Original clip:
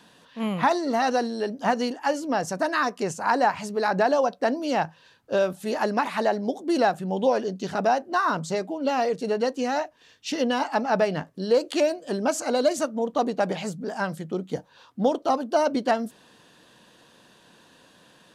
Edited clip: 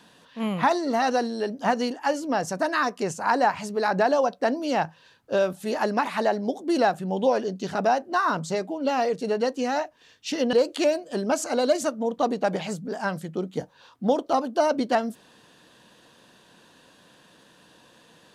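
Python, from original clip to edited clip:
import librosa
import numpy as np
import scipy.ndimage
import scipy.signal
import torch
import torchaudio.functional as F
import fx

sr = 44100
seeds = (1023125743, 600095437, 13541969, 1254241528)

y = fx.edit(x, sr, fx.cut(start_s=10.53, length_s=0.96), tone=tone)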